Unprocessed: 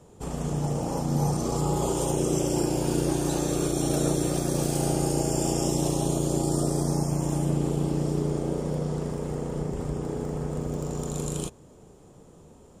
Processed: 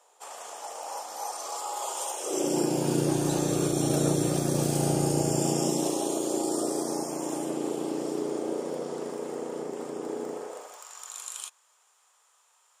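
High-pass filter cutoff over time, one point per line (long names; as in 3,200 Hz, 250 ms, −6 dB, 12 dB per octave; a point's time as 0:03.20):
high-pass filter 24 dB per octave
0:02.20 690 Hz
0:02.48 200 Hz
0:03.26 84 Hz
0:05.28 84 Hz
0:06.00 280 Hz
0:10.30 280 Hz
0:10.87 1,100 Hz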